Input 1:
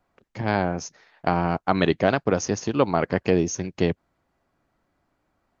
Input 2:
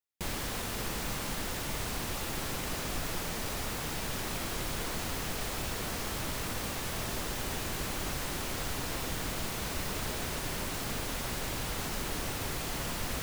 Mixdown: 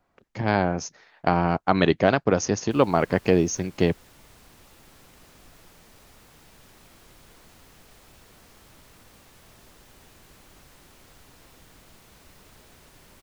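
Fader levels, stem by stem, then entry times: +1.0, -17.5 dB; 0.00, 2.50 s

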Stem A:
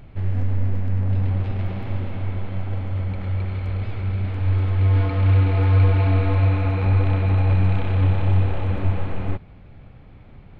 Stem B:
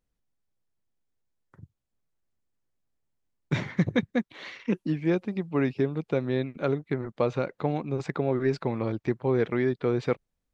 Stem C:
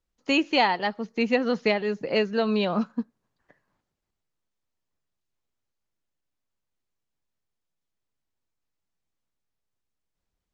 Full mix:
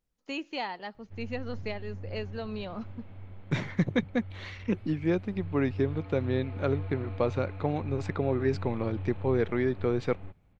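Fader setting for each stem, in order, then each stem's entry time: -19.5, -2.0, -13.0 dB; 0.95, 0.00, 0.00 s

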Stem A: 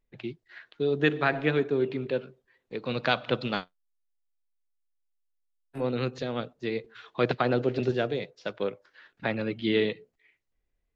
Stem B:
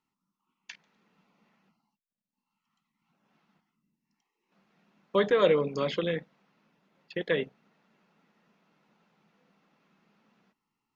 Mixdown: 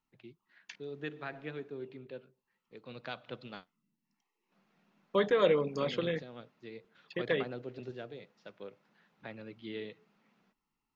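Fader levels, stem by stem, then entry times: -16.5, -3.5 dB; 0.00, 0.00 s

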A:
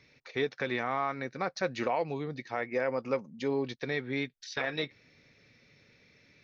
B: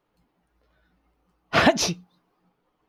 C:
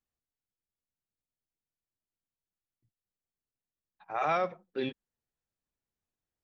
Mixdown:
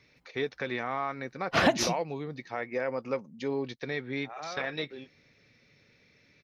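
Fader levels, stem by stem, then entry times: -1.0, -6.0, -11.5 dB; 0.00, 0.00, 0.15 s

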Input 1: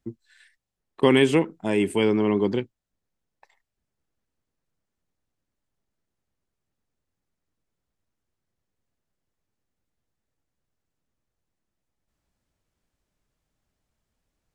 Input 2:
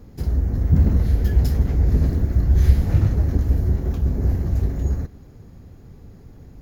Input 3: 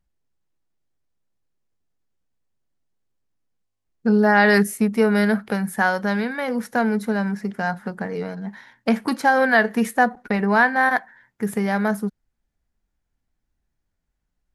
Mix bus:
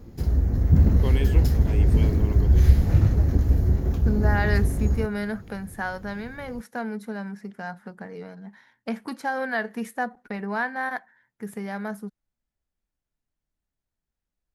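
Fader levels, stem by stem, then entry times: -14.0, -1.0, -10.5 dB; 0.00, 0.00, 0.00 s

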